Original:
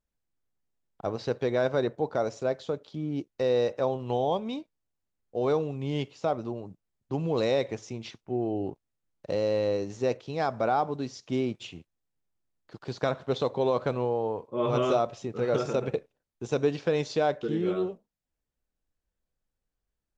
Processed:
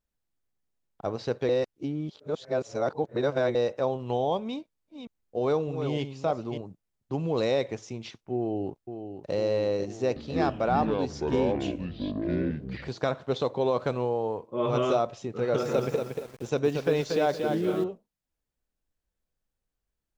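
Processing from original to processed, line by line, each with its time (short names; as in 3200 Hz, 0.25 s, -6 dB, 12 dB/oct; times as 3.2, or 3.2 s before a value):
1.49–3.55 reverse
4.47–6.61 reverse delay 0.301 s, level -8 dB
8.37–9.35 echo throw 0.5 s, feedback 75%, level -8.5 dB
9.9–12.89 echoes that change speed 0.26 s, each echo -7 st, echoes 2
13.79–14.38 high shelf 6100 Hz +7 dB
15.34–17.84 lo-fi delay 0.233 s, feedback 35%, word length 8-bit, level -5 dB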